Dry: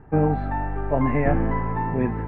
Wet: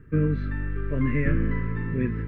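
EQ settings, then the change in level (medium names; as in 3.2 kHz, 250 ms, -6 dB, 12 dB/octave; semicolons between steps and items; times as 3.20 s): Butterworth band-stop 780 Hz, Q 0.91; tone controls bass +8 dB, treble +6 dB; bass shelf 460 Hz -8.5 dB; 0.0 dB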